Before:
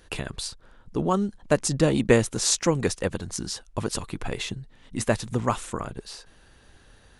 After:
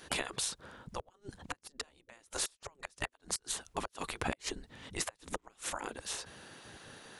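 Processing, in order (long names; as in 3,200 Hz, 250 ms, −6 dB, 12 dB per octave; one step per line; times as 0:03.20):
gate with flip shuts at −14 dBFS, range −37 dB
downward compressor 2.5 to 1, threshold −33 dBFS, peak gain reduction 8 dB
gate on every frequency bin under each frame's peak −10 dB weak
level +6 dB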